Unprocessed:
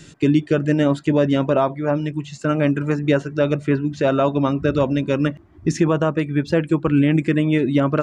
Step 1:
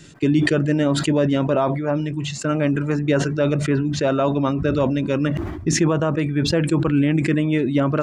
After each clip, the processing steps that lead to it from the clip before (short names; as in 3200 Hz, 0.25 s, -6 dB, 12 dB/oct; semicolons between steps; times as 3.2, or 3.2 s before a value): sustainer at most 41 dB/s; gain -2 dB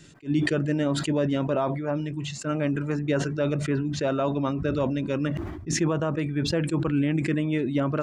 attack slew limiter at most 330 dB/s; gain -6 dB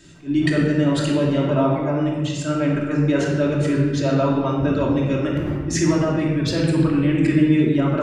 shoebox room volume 1400 m³, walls mixed, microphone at 2.8 m